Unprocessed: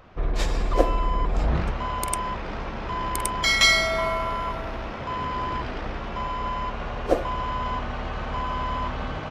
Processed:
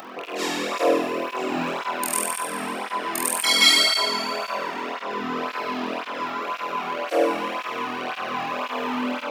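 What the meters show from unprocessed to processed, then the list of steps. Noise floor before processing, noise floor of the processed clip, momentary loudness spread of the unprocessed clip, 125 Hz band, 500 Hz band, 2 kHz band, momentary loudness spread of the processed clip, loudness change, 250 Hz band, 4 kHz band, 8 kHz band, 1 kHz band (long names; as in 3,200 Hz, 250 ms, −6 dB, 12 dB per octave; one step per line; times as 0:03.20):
−33 dBFS, −35 dBFS, 11 LU, −16.0 dB, +3.0 dB, +0.5 dB, 12 LU, +2.5 dB, +4.0 dB, +6.0 dB, +5.5 dB, +1.0 dB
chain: loose part that buzzes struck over −29 dBFS, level −24 dBFS
high-pass filter 220 Hz 24 dB per octave
high-shelf EQ 10,000 Hz +9.5 dB
flutter between parallel walls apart 4.1 metres, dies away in 1.3 s
four-comb reverb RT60 1.7 s, combs from 28 ms, DRR 9.5 dB
upward compression, threshold −25 dBFS
through-zero flanger with one copy inverted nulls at 1.9 Hz, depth 2.1 ms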